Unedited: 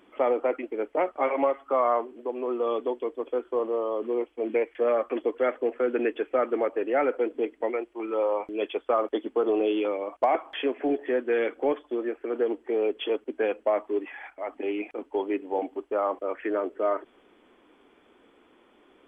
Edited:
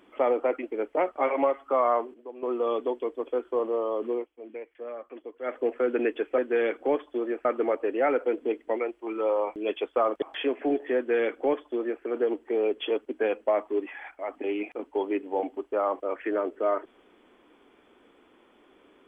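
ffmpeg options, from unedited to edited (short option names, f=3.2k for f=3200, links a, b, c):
-filter_complex "[0:a]asplit=8[a][b][c][d][e][f][g][h];[a]atrim=end=2.142[i];[b]atrim=start=2.138:end=2.432,asetpts=PTS-STARTPTS,volume=-9.5dB[j];[c]atrim=start=2.428:end=4.27,asetpts=PTS-STARTPTS,afade=t=out:st=1.632:d=0.21:c=qsin:silence=0.199526[k];[d]atrim=start=4.27:end=5.42,asetpts=PTS-STARTPTS,volume=-14dB[l];[e]atrim=start=5.42:end=6.382,asetpts=PTS-STARTPTS,afade=t=in:d=0.21:c=qsin:silence=0.199526[m];[f]atrim=start=11.148:end=12.222[n];[g]atrim=start=6.378:end=9.152[o];[h]atrim=start=10.408[p];[i][j]acrossfade=d=0.004:c1=hsin:c2=hsin[q];[k][l][m]concat=n=3:v=0:a=1[r];[q][r]acrossfade=d=0.004:c1=hsin:c2=hsin[s];[s][n]acrossfade=d=0.004:c1=hsin:c2=hsin[t];[t][o]acrossfade=d=0.004:c1=hsin:c2=hsin[u];[u][p]acrossfade=d=0.004:c1=hsin:c2=hsin"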